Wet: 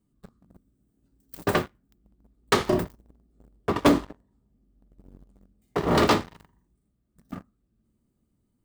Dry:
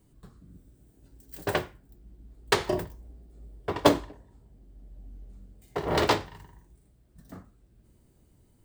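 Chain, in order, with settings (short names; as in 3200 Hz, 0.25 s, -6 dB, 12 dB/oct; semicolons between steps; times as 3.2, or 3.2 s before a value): small resonant body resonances 220/1200 Hz, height 10 dB, ringing for 30 ms; sample leveller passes 3; gain -8 dB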